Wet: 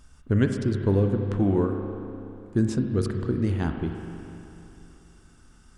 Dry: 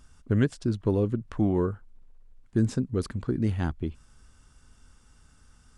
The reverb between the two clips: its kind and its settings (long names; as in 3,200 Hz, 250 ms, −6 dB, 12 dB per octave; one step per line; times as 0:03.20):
spring reverb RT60 3.1 s, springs 30/41 ms, chirp 75 ms, DRR 4 dB
level +1.5 dB